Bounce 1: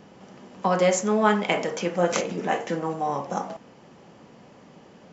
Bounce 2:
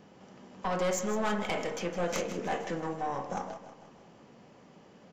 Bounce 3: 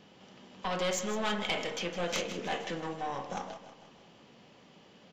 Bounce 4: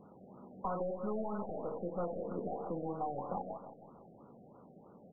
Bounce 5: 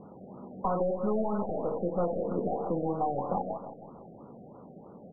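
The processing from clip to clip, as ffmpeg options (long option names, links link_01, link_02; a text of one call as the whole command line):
ffmpeg -i in.wav -af "aeval=exprs='(tanh(10*val(0)+0.35)-tanh(0.35))/10':channel_layout=same,aecho=1:1:159|318|477|636|795:0.251|0.128|0.0653|0.0333|0.017,volume=-5dB" out.wav
ffmpeg -i in.wav -af "equalizer=frequency=3400:width_type=o:width=1.2:gain=11,volume=-3dB" out.wav
ffmpeg -i in.wav -af "acompressor=threshold=-34dB:ratio=6,afftfilt=real='re*lt(b*sr/1024,750*pow(1500/750,0.5+0.5*sin(2*PI*3.1*pts/sr)))':imag='im*lt(b*sr/1024,750*pow(1500/750,0.5+0.5*sin(2*PI*3.1*pts/sr)))':win_size=1024:overlap=0.75,volume=1.5dB" out.wav
ffmpeg -i in.wav -af "lowpass=1200,volume=8.5dB" out.wav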